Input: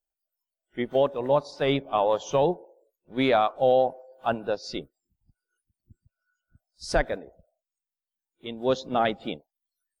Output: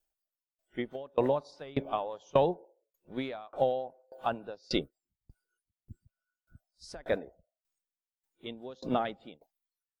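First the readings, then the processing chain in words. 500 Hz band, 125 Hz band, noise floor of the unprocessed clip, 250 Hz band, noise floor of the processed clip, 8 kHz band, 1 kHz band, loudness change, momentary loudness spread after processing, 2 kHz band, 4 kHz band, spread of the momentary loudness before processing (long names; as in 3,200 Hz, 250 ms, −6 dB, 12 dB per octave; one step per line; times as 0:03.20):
−7.5 dB, −6.0 dB, below −85 dBFS, −6.0 dB, below −85 dBFS, −12.0 dB, −8.5 dB, −7.5 dB, 16 LU, −10.5 dB, −7.5 dB, 15 LU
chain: downward compressor 5 to 1, threshold −26 dBFS, peak gain reduction 9.5 dB
tremolo with a ramp in dB decaying 1.7 Hz, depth 29 dB
level +7.5 dB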